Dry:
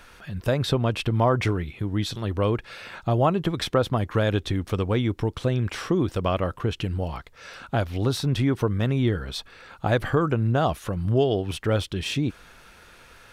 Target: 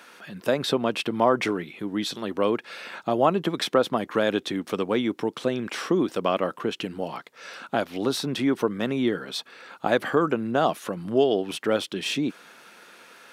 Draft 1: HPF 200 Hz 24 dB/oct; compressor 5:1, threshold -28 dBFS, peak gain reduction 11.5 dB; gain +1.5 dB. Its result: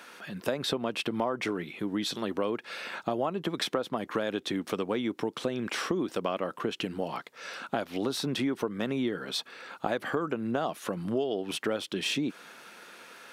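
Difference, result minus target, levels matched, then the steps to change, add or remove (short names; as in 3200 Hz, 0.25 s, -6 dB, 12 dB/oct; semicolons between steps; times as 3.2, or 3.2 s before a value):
compressor: peak gain reduction +11.5 dB
remove: compressor 5:1, threshold -28 dBFS, peak gain reduction 11.5 dB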